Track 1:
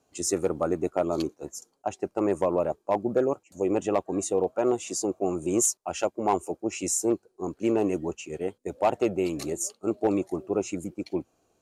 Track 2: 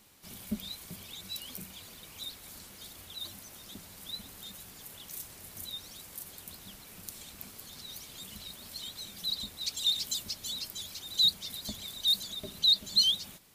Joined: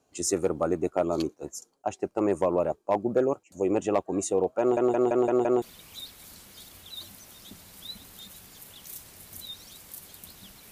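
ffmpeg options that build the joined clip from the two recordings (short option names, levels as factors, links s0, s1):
-filter_complex "[0:a]apad=whole_dur=10.71,atrim=end=10.71,asplit=6[s0][s1][s2][s3][s4][s5];[s0]atrim=end=4.772[s6];[s1]atrim=start=4.598:end=4.772[s7];[s2]atrim=start=4.598:end=4.772[s8];[s3]atrim=start=4.598:end=4.772[s9];[s4]atrim=start=4.598:end=4.772[s10];[s5]atrim=start=4.598:end=4.772[s11];[1:a]atrim=start=1.858:end=6.95[s12];[s6][s7]acrossfade=d=0.004:c1=hsin:c2=hsin[s13];[s13][s8]acrossfade=d=0.004:c1=hsin:c2=hsin[s14];[s14][s9]acrossfade=d=0.004:c1=hsin:c2=hsin[s15];[s15][s10]acrossfade=d=0.004:c1=hsin:c2=hsin[s16];[s16][s11]acrossfade=d=0.004:c1=hsin:c2=hsin[s17];[s17][s12]acrossfade=d=0.004:c1=hsin:c2=hsin"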